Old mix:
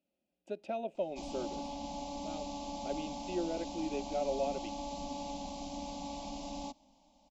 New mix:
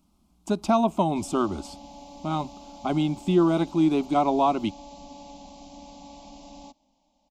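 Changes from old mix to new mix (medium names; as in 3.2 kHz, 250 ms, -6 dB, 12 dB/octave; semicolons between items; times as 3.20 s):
speech: remove vowel filter e; background -3.5 dB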